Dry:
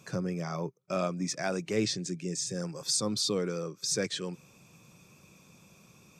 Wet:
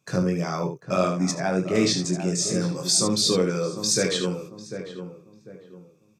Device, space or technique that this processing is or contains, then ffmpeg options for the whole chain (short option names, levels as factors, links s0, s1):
slapback doubling: -filter_complex "[0:a]asplit=3[s0][s1][s2];[s1]adelay=22,volume=0.596[s3];[s2]adelay=75,volume=0.447[s4];[s0][s3][s4]amix=inputs=3:normalize=0,asettb=1/sr,asplit=3[s5][s6][s7];[s5]atrim=end=1.314[s8];[s6]atrim=start=1.31:end=1.75,asetpts=PTS-STARTPTS,afade=t=in:d=0.004:c=qsin,afade=t=out:st=0.436:d=0.004:c=qsin,highshelf=f=2200:g=-10.5[s9];[s7]atrim=start=1.746[s10];[s8][s9]acrossfade=d=0.004:c1=hsin:c2=qsin[s11];[s11][s10]acrossfade=d=0.004:c1=qsin:c2=hsin,agate=range=0.0794:threshold=0.00398:ratio=16:detection=peak,asplit=2[s12][s13];[s13]adelay=747,lowpass=f=1200:p=1,volume=0.355,asplit=2[s14][s15];[s15]adelay=747,lowpass=f=1200:p=1,volume=0.35,asplit=2[s16][s17];[s17]adelay=747,lowpass=f=1200:p=1,volume=0.35,asplit=2[s18][s19];[s19]adelay=747,lowpass=f=1200:p=1,volume=0.35[s20];[s12][s14][s16][s18][s20]amix=inputs=5:normalize=0,volume=2.11"